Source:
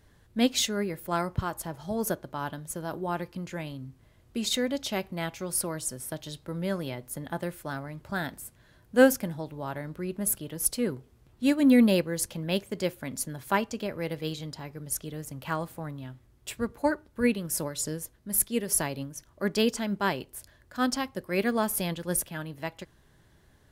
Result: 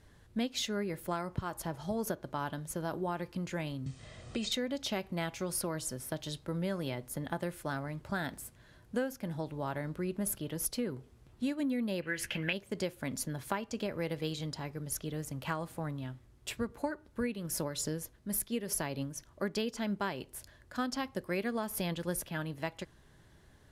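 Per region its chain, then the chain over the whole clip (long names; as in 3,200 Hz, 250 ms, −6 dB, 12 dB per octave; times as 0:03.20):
0:03.86–0:04.52: linear-phase brick-wall low-pass 9,400 Hz + comb filter 1.6 ms, depth 45% + multiband upward and downward compressor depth 70%
0:12.02–0:12.53: flat-topped bell 2,100 Hz +15.5 dB 1.3 octaves + double-tracking delay 15 ms −10 dB
whole clip: low-pass filter 12,000 Hz 12 dB per octave; dynamic equaliser 8,500 Hz, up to −7 dB, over −47 dBFS, Q 1.7; downward compressor 20 to 1, threshold −30 dBFS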